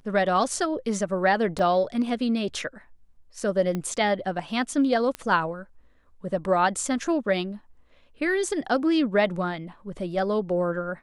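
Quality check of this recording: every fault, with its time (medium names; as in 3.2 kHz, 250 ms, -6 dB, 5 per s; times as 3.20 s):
1.59 s: dropout 2.6 ms
3.75 s: pop -17 dBFS
5.15 s: pop -16 dBFS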